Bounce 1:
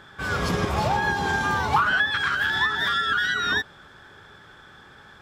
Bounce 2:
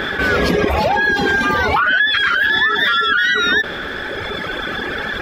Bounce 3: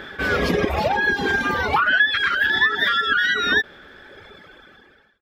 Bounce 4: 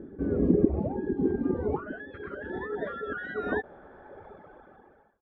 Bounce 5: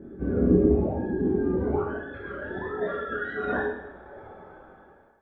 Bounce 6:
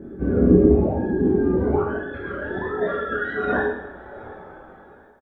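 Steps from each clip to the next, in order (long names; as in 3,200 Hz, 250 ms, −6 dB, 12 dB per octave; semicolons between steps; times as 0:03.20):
reverb reduction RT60 2 s; graphic EQ with 10 bands 125 Hz −11 dB, 250 Hz +4 dB, 500 Hz +5 dB, 1,000 Hz −8 dB, 2,000 Hz +5 dB, 8,000 Hz −11 dB; envelope flattener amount 70%; level +5 dB
fade-out on the ending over 1.01 s; expander for the loud parts 2.5 to 1, over −25 dBFS
low-pass filter sweep 310 Hz → 830 Hz, 0:01.24–0:03.90; level −4 dB
coupled-rooms reverb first 0.79 s, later 2.2 s, from −24 dB, DRR −8 dB; level −5 dB
repeating echo 719 ms, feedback 33%, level −23.5 dB; level +5.5 dB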